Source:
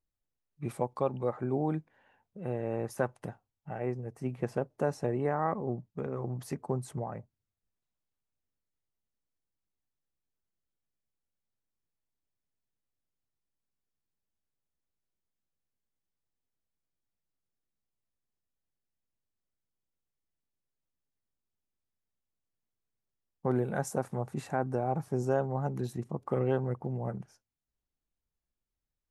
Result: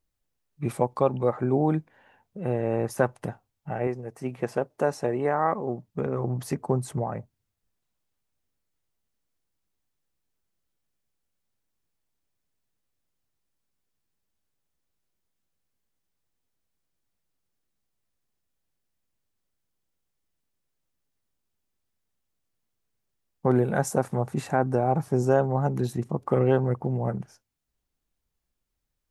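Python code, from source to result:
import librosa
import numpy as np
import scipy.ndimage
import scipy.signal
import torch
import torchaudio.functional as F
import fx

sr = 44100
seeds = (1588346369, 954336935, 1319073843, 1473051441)

y = fx.low_shelf(x, sr, hz=220.0, db=-10.5, at=(3.87, 5.88))
y = F.gain(torch.from_numpy(y), 7.5).numpy()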